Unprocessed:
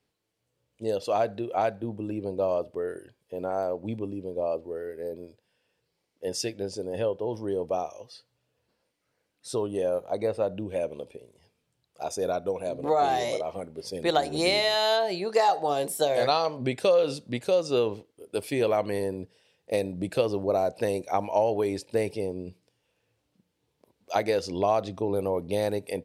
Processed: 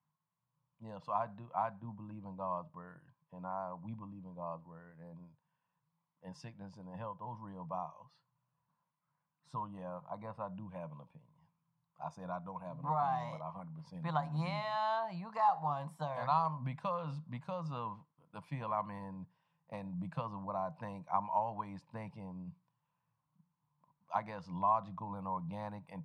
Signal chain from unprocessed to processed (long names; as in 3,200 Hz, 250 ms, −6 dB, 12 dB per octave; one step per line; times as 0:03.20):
pair of resonant band-passes 400 Hz, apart 2.7 octaves
level +5 dB